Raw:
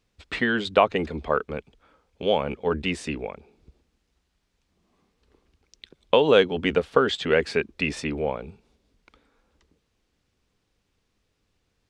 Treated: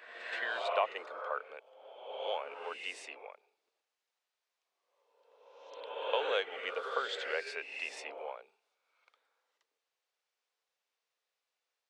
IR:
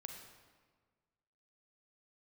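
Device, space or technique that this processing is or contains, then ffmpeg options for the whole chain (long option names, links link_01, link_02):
ghost voice: -filter_complex "[0:a]areverse[link_01];[1:a]atrim=start_sample=2205[link_02];[link_01][link_02]afir=irnorm=-1:irlink=0,areverse,highpass=frequency=560:width=0.5412,highpass=frequency=560:width=1.3066,volume=-6dB"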